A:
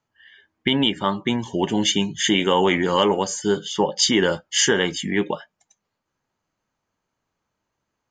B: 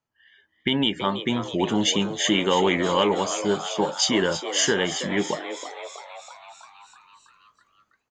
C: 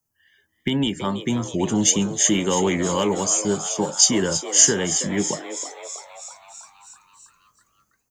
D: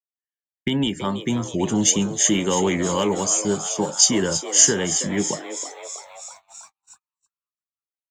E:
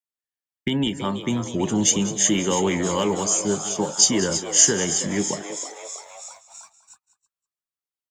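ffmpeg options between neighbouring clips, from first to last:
ffmpeg -i in.wav -filter_complex "[0:a]dynaudnorm=framelen=290:gausssize=3:maxgain=11dB,asplit=2[link_01][link_02];[link_02]asplit=8[link_03][link_04][link_05][link_06][link_07][link_08][link_09][link_10];[link_03]adelay=326,afreqshift=120,volume=-11dB[link_11];[link_04]adelay=652,afreqshift=240,volume=-14.9dB[link_12];[link_05]adelay=978,afreqshift=360,volume=-18.8dB[link_13];[link_06]adelay=1304,afreqshift=480,volume=-22.6dB[link_14];[link_07]adelay=1630,afreqshift=600,volume=-26.5dB[link_15];[link_08]adelay=1956,afreqshift=720,volume=-30.4dB[link_16];[link_09]adelay=2282,afreqshift=840,volume=-34.3dB[link_17];[link_10]adelay=2608,afreqshift=960,volume=-38.1dB[link_18];[link_11][link_12][link_13][link_14][link_15][link_16][link_17][link_18]amix=inputs=8:normalize=0[link_19];[link_01][link_19]amix=inputs=2:normalize=0,volume=-7.5dB" out.wav
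ffmpeg -i in.wav -filter_complex "[0:a]acrossover=split=170|360|2200[link_01][link_02][link_03][link_04];[link_04]aexciter=amount=9.8:drive=0.9:freq=5300[link_05];[link_01][link_02][link_03][link_05]amix=inputs=4:normalize=0,lowshelf=frequency=260:gain=11,volume=-3.5dB" out.wav
ffmpeg -i in.wav -af "agate=range=-44dB:threshold=-44dB:ratio=16:detection=peak" out.wav
ffmpeg -i in.wav -af "aecho=1:1:195:0.178,volume=-1dB" out.wav

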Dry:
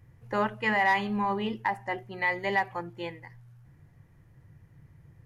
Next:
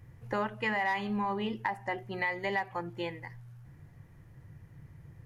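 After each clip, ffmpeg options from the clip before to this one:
ffmpeg -i in.wav -af "acompressor=threshold=-35dB:ratio=2.5,volume=3dB" out.wav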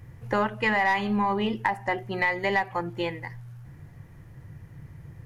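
ffmpeg -i in.wav -af "aeval=exprs='0.133*(cos(1*acos(clip(val(0)/0.133,-1,1)))-cos(1*PI/2))+0.00531*(cos(6*acos(clip(val(0)/0.133,-1,1)))-cos(6*PI/2))+0.00188*(cos(8*acos(clip(val(0)/0.133,-1,1)))-cos(8*PI/2))':channel_layout=same,volume=7dB" out.wav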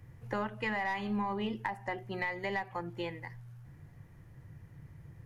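ffmpeg -i in.wav -filter_complex "[0:a]acrossover=split=220[link_01][link_02];[link_02]acompressor=threshold=-30dB:ratio=1.5[link_03];[link_01][link_03]amix=inputs=2:normalize=0,volume=-7dB" out.wav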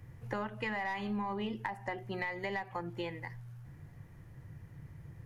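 ffmpeg -i in.wav -af "acompressor=threshold=-37dB:ratio=2,volume=1.5dB" out.wav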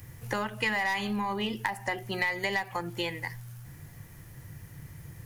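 ffmpeg -i in.wav -af "crystalizer=i=5:c=0,volume=4dB" out.wav

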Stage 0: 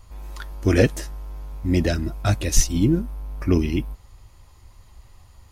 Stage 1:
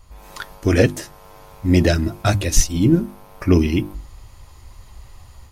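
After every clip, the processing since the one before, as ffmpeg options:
ffmpeg -i in.wav -af "bandreject=frequency=50:width_type=h:width=6,bandreject=frequency=100:width_type=h:width=6,bandreject=frequency=150:width_type=h:width=6,bandreject=frequency=200:width_type=h:width=6,bandreject=frequency=250:width_type=h:width=6,bandreject=frequency=300:width_type=h:width=6,bandreject=frequency=350:width_type=h:width=6,dynaudnorm=framelen=140:gausssize=3:maxgain=7dB" out.wav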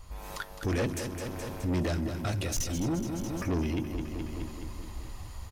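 ffmpeg -i in.wav -filter_complex "[0:a]asoftclip=type=tanh:threshold=-16.5dB,asplit=2[link_01][link_02];[link_02]aecho=0:1:211|422|633|844|1055|1266|1477:0.316|0.19|0.114|0.0683|0.041|0.0246|0.0148[link_03];[link_01][link_03]amix=inputs=2:normalize=0,alimiter=level_in=0.5dB:limit=-24dB:level=0:latency=1:release=452,volume=-0.5dB" out.wav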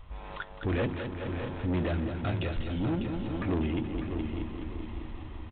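ffmpeg -i in.wav -af "aecho=1:1:598|1196|1794|2392:0.355|0.138|0.054|0.021" -ar 8000 -c:a adpcm_g726 -b:a 32k out.wav

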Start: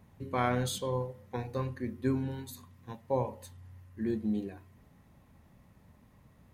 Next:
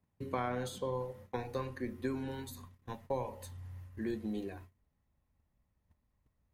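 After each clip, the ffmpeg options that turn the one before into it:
ffmpeg -i in.wav -filter_complex "[0:a]acrossover=split=270|1500[link_01][link_02][link_03];[link_01]acompressor=threshold=-46dB:ratio=4[link_04];[link_02]acompressor=threshold=-37dB:ratio=4[link_05];[link_03]acompressor=threshold=-51dB:ratio=4[link_06];[link_04][link_05][link_06]amix=inputs=3:normalize=0,agate=range=-23dB:threshold=-54dB:ratio=16:detection=peak,asubboost=boost=4.5:cutoff=68,volume=2.5dB" out.wav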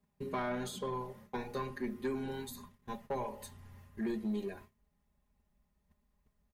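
ffmpeg -i in.wav -af "aecho=1:1:4.9:0.82,asoftclip=type=tanh:threshold=-28dB" out.wav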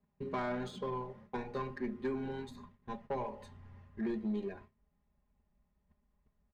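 ffmpeg -i in.wav -af "adynamicsmooth=sensitivity=8:basefreq=3000" out.wav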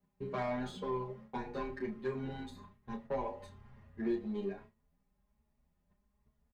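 ffmpeg -i in.wav -filter_complex "[0:a]asplit=2[link_01][link_02];[link_02]adelay=31,volume=-8dB[link_03];[link_01][link_03]amix=inputs=2:normalize=0,aecho=1:1:82:0.0668,asplit=2[link_04][link_05];[link_05]adelay=8.4,afreqshift=1.2[link_06];[link_04][link_06]amix=inputs=2:normalize=1,volume=2.5dB" out.wav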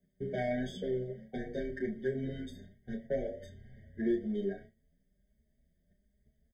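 ffmpeg -i in.wav -af "afftfilt=real='re*eq(mod(floor(b*sr/1024/750),2),0)':imag='im*eq(mod(floor(b*sr/1024/750),2),0)':win_size=1024:overlap=0.75,volume=3.5dB" out.wav

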